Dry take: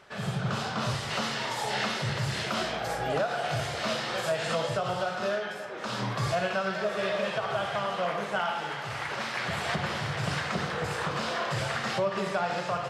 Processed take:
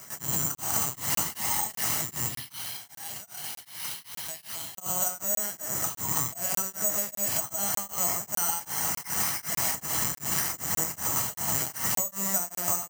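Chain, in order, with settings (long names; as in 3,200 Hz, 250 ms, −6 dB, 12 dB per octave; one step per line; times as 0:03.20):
0:02.27–0:04.79: first difference
linear-prediction vocoder at 8 kHz pitch kept
high-pass filter 93 Hz 24 dB per octave
bad sample-rate conversion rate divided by 6×, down filtered, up zero stuff
convolution reverb RT60 0.70 s, pre-delay 6 ms, DRR 6.5 dB
downward compressor, threshold −22 dBFS, peak gain reduction 9.5 dB
comb filter 1 ms, depth 35%
regular buffer underruns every 0.60 s, samples 1,024, zero, from 0:00.55
tremolo along a rectified sine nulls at 2.6 Hz
level +2 dB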